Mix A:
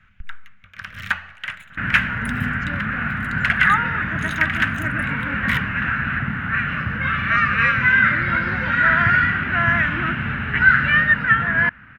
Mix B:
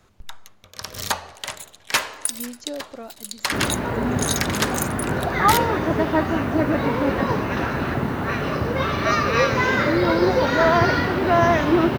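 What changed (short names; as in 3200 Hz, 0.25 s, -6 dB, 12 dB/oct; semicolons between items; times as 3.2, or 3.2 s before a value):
speech -6.5 dB; second sound: entry +1.75 s; master: remove EQ curve 210 Hz 0 dB, 370 Hz -20 dB, 590 Hz -16 dB, 1000 Hz -10 dB, 1500 Hz +10 dB, 2800 Hz +3 dB, 4300 Hz -17 dB, 6500 Hz -20 dB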